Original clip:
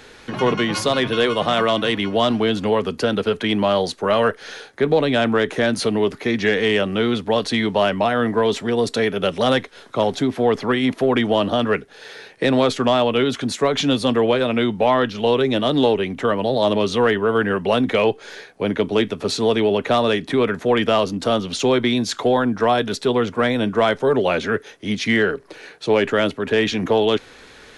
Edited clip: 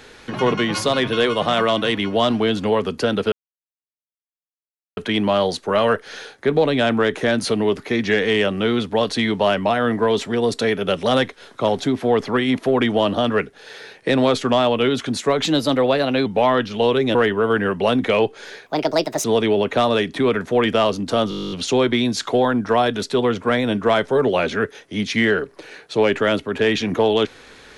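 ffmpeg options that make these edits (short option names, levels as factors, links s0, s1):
-filter_complex "[0:a]asplit=18[s0][s1][s2][s3][s4][s5][s6][s7][s8][s9][s10][s11][s12][s13][s14][s15][s16][s17];[s0]atrim=end=3.32,asetpts=PTS-STARTPTS,afade=t=out:st=3.316:d=0.004:c=hsin,apad=pad_dur=1.65[s18];[s1]atrim=start=3.32:end=13.794,asetpts=PTS-STARTPTS,afade=t=in:d=0.004:c=hsin[s19];[s2]atrim=start=13.79:end=14.7,asetpts=PTS-STARTPTS,asetrate=48951,aresample=44100,atrim=end_sample=36154,asetpts=PTS-STARTPTS[s20];[s3]atrim=start=14.696:end=15.592[s21];[s4]atrim=start=16.998:end=18.514[s22];[s5]atrim=start=18.51:end=19.38,asetpts=PTS-STARTPTS,asetrate=65709,aresample=44100[s23];[s6]atrim=start=19.376:end=21.452[s24];[s7]atrim=start=21.428:end=21.452[s25];[s8]atrim=start=21.428:end=21.452[s26];[s9]atrim=start=21.428:end=21.452[s27];[s10]atrim=start=21.428:end=21.452[s28];[s11]atrim=start=21.428:end=21.452[s29];[s12]atrim=start=21.428:end=21.452[s30];[s13]atrim=start=21.428:end=21.452[s31];[s14]atrim=start=21.428:end=21.452[s32];[s15]atrim=start=21.428:end=21.452[s33];[s16]atrim=start=21.428:end=21.452[s34];[s17]atrim=start=21.428[s35];[s18][s19]concat=n=2:v=0:a=1[s36];[s36][s20]acrossfade=d=0.004:c1=hsin:c2=hsin[s37];[s37][s21]acrossfade=d=0.004:c1=hsin:c2=hsin[s38];[s38][s22]acrossfade=d=0.004:c1=hsin:c2=hsin[s39];[s39][s23]acrossfade=d=0.004:c1=hsin:c2=hsin[s40];[s40][s24]acrossfade=d=0.004:c1=hsin:c2=hsin[s41];[s41][s25]acrossfade=d=0.004:c1=hsin:c2=hsin[s42];[s42][s26]acrossfade=d=0.004:c1=hsin:c2=hsin[s43];[s43][s27]acrossfade=d=0.004:c1=hsin:c2=hsin[s44];[s44][s28]acrossfade=d=0.004:c1=hsin:c2=hsin[s45];[s45][s29]acrossfade=d=0.004:c1=hsin:c2=hsin[s46];[s46][s30]acrossfade=d=0.004:c1=hsin:c2=hsin[s47];[s47][s31]acrossfade=d=0.004:c1=hsin:c2=hsin[s48];[s48][s32]acrossfade=d=0.004:c1=hsin:c2=hsin[s49];[s49][s33]acrossfade=d=0.004:c1=hsin:c2=hsin[s50];[s50][s34]acrossfade=d=0.004:c1=hsin:c2=hsin[s51];[s51][s35]acrossfade=d=0.004:c1=hsin:c2=hsin"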